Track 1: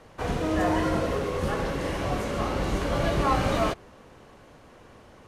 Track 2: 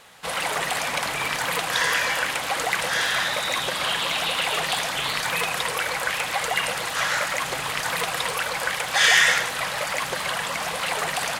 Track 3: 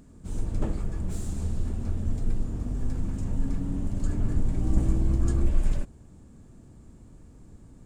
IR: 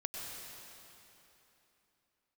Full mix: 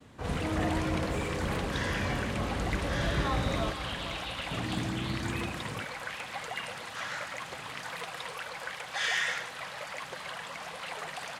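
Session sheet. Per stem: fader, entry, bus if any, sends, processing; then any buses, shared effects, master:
-9.5 dB, 0.00 s, no send, echo send -11 dB, low shelf 190 Hz +9.5 dB
-12.5 dB, 0.00 s, no send, no echo send, high shelf 8700 Hz -9.5 dB
-4.0 dB, 0.00 s, muted 2.54–4.51, no send, no echo send, HPF 96 Hz 24 dB/oct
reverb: off
echo: feedback echo 0.463 s, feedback 57%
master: expander -55 dBFS; HPF 51 Hz; high shelf 12000 Hz -4 dB

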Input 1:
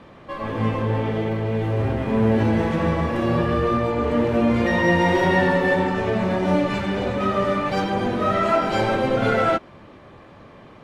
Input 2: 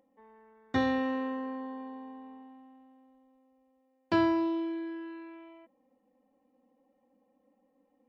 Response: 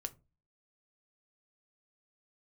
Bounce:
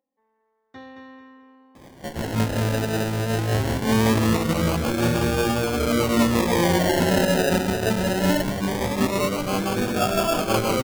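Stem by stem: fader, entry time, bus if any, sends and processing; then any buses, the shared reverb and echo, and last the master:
+1.0 dB, 1.75 s, no send, no echo send, rotary speaker horn 6 Hz; decimation with a swept rate 31×, swing 60% 0.21 Hz
-12.0 dB, 0.00 s, no send, echo send -7 dB, low shelf 290 Hz -6 dB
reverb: off
echo: feedback echo 0.221 s, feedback 30%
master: dry

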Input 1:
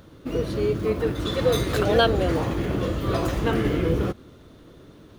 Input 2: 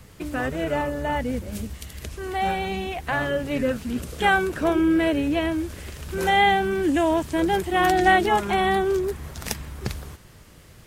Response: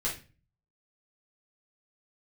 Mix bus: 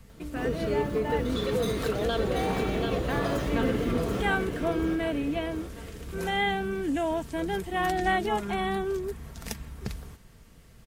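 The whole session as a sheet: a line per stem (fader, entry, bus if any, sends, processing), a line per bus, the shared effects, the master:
-4.5 dB, 0.10 s, no send, echo send -5 dB, limiter -16.5 dBFS, peak gain reduction 10.5 dB
-8.5 dB, 0.00 s, no send, no echo send, low shelf 190 Hz +7.5 dB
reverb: off
echo: feedback echo 0.734 s, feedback 49%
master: bell 77 Hz -7 dB 0.3 oct; comb 4.4 ms, depth 32%

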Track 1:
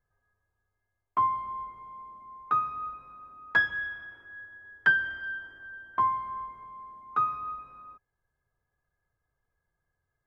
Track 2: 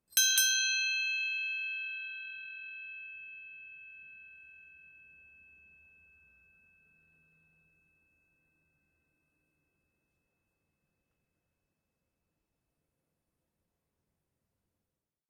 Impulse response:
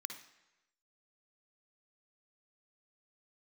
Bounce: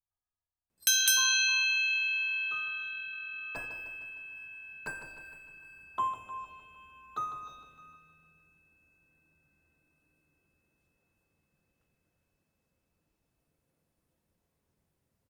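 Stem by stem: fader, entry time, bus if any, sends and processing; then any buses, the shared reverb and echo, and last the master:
3.02 s -20.5 dB -> 3.63 s -9.5 dB, 0.00 s, send -9.5 dB, echo send -9 dB, median filter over 25 samples; envelope phaser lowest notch 470 Hz, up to 4200 Hz, full sweep at -33.5 dBFS; bell 690 Hz +8.5 dB 2.3 oct
+0.5 dB, 0.70 s, no send, no echo send, AGC gain up to 4 dB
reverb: on, RT60 1.0 s, pre-delay 50 ms
echo: feedback echo 0.153 s, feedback 55%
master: dry

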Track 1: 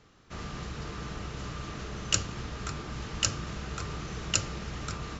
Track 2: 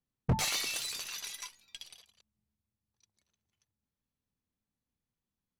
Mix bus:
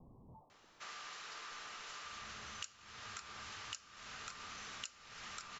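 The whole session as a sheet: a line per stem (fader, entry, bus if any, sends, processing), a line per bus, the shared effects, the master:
-1.0 dB, 0.50 s, no send, HPF 1100 Hz 12 dB/oct
-15.0 dB, 0.00 s, no send, infinite clipping; steep low-pass 1100 Hz 96 dB/oct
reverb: off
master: compressor 8:1, threshold -45 dBFS, peak gain reduction 23.5 dB

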